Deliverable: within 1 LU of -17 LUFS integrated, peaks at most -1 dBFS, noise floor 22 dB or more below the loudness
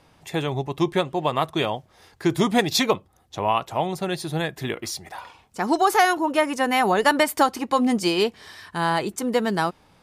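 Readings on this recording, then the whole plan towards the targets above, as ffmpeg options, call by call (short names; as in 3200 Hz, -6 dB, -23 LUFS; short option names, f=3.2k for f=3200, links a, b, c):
loudness -23.0 LUFS; peak -5.5 dBFS; loudness target -17.0 LUFS
-> -af "volume=6dB,alimiter=limit=-1dB:level=0:latency=1"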